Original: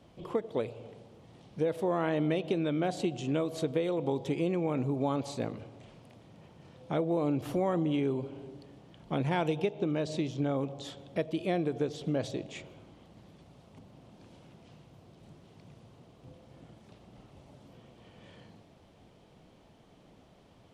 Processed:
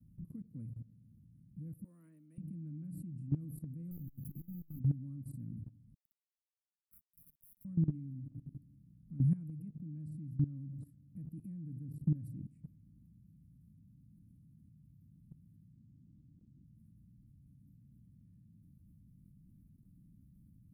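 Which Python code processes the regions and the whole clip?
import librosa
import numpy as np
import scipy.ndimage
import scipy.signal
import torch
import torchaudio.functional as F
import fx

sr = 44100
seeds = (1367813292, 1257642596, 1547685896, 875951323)

y = fx.chain(x, sr, fx.highpass(hz=580.0, slope=12),
    fx.high_shelf(hz=3800.0, db=8.0), at=(1.84, 2.38))
y = fx.chain(y, sr, fx.resample_bad(factor=3, down='none', up='hold'),
    fx.overload_stage(gain_db=32.0),
    fx.transformer_sat(knee_hz=150.0), at=(3.91, 4.8))
y = fx.chain(y, sr, fx.highpass(hz=1300.0, slope=24),
    fx.quant_dither(seeds[0], bits=8, dither='none'),
    fx.level_steps(step_db=11), at=(5.94, 7.65))
y = fx.chain(y, sr, fx.cheby_ripple(hz=1200.0, ripple_db=9),
    fx.band_squash(depth_pct=70), at=(15.72, 16.64))
y = scipy.signal.sosfilt(scipy.signal.cheby2(4, 40, [360.0, 6900.0], 'bandstop', fs=sr, output='sos'), y)
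y = fx.peak_eq(y, sr, hz=310.0, db=10.0, octaves=0.66)
y = fx.level_steps(y, sr, step_db=17)
y = y * librosa.db_to_amplitude(7.0)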